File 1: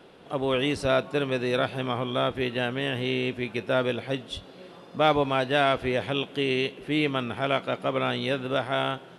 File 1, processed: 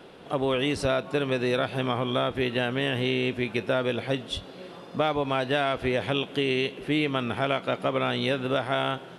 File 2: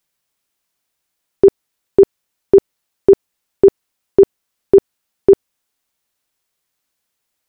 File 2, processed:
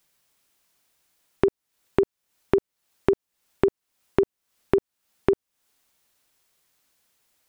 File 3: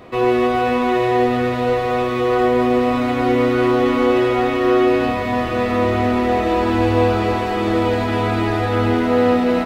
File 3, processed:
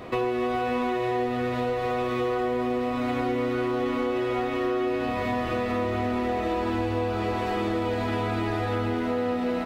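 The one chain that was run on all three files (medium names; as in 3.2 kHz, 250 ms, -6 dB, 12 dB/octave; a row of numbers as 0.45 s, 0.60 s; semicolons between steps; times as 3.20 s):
compression 8:1, threshold -25 dBFS; normalise loudness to -27 LUFS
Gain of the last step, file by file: +3.5 dB, +5.5 dB, +1.0 dB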